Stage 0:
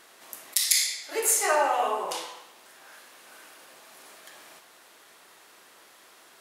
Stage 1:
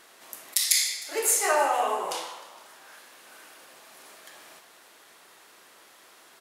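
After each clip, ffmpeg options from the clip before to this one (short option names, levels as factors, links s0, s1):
-filter_complex "[0:a]asplit=7[s0][s1][s2][s3][s4][s5][s6];[s1]adelay=154,afreqshift=40,volume=0.133[s7];[s2]adelay=308,afreqshift=80,volume=0.0841[s8];[s3]adelay=462,afreqshift=120,volume=0.0531[s9];[s4]adelay=616,afreqshift=160,volume=0.0335[s10];[s5]adelay=770,afreqshift=200,volume=0.0209[s11];[s6]adelay=924,afreqshift=240,volume=0.0132[s12];[s0][s7][s8][s9][s10][s11][s12]amix=inputs=7:normalize=0"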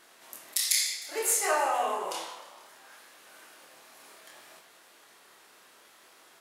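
-af "flanger=delay=22.5:depth=5.4:speed=0.63"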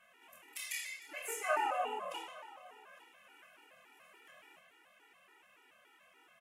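-af "highshelf=f=3400:t=q:w=3:g=-7.5,aecho=1:1:856:0.0891,afftfilt=real='re*gt(sin(2*PI*3.5*pts/sr)*(1-2*mod(floor(b*sr/1024/250),2)),0)':imag='im*gt(sin(2*PI*3.5*pts/sr)*(1-2*mod(floor(b*sr/1024/250),2)),0)':win_size=1024:overlap=0.75,volume=0.562"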